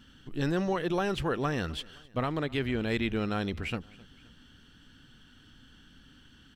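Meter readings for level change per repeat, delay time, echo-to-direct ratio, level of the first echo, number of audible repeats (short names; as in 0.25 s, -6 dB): -5.5 dB, 0.261 s, -22.5 dB, -23.5 dB, 2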